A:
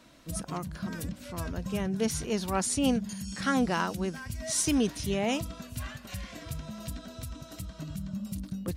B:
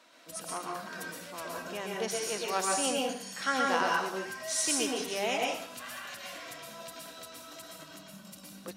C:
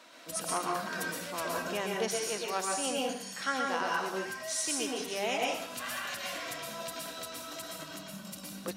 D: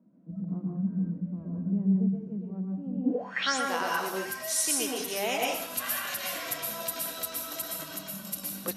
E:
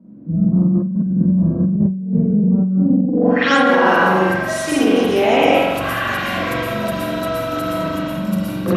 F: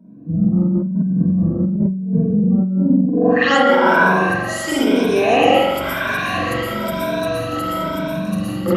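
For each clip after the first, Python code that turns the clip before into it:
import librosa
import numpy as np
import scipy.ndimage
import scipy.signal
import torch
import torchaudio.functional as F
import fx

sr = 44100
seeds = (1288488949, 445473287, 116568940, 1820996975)

y1 = scipy.signal.sosfilt(scipy.signal.butter(2, 530.0, 'highpass', fs=sr, output='sos'), x)
y1 = fx.high_shelf(y1, sr, hz=6900.0, db=-5.0)
y1 = fx.rev_plate(y1, sr, seeds[0], rt60_s=0.62, hf_ratio=0.9, predelay_ms=105, drr_db=-1.5)
y2 = fx.rider(y1, sr, range_db=5, speed_s=0.5)
y3 = fx.filter_sweep_lowpass(y2, sr, from_hz=190.0, to_hz=12000.0, start_s=3.03, end_s=3.63, q=7.6)
y3 = y3 * 10.0 ** (2.0 / 20.0)
y4 = fx.riaa(y3, sr, side='playback')
y4 = fx.rev_spring(y4, sr, rt60_s=1.1, pass_ms=(43,), chirp_ms=35, drr_db=-8.0)
y4 = fx.over_compress(y4, sr, threshold_db=-20.0, ratio=-1.0)
y4 = y4 * 10.0 ** (5.5 / 20.0)
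y5 = fx.spec_ripple(y4, sr, per_octave=1.6, drift_hz=0.99, depth_db=13)
y5 = y5 * 10.0 ** (-2.0 / 20.0)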